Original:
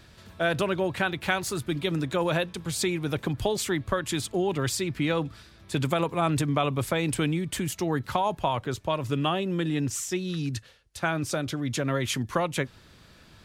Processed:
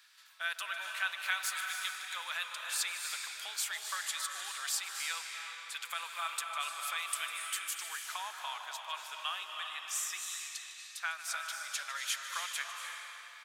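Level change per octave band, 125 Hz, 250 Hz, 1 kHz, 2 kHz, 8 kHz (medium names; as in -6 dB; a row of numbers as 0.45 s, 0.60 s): under -40 dB, under -40 dB, -10.0 dB, -4.0 dB, -1.5 dB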